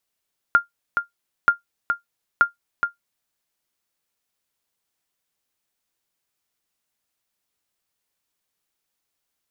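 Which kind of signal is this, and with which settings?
sonar ping 1400 Hz, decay 0.13 s, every 0.93 s, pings 3, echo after 0.42 s, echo -6.5 dB -5.5 dBFS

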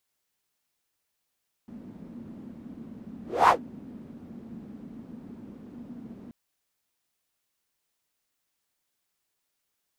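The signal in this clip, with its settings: whoosh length 4.63 s, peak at 1.81, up 0.27 s, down 0.12 s, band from 230 Hz, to 1000 Hz, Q 5.6, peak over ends 27 dB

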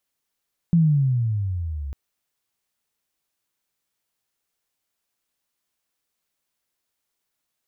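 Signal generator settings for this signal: gliding synth tone sine, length 1.20 s, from 173 Hz, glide -16.5 st, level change -15.5 dB, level -12.5 dB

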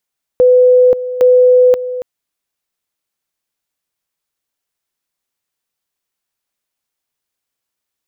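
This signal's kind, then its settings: two-level tone 501 Hz -4.5 dBFS, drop 13.5 dB, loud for 0.53 s, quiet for 0.28 s, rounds 2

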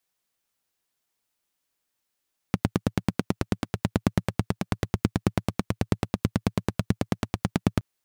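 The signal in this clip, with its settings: single-cylinder engine model, steady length 5.27 s, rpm 1100, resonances 110/180 Hz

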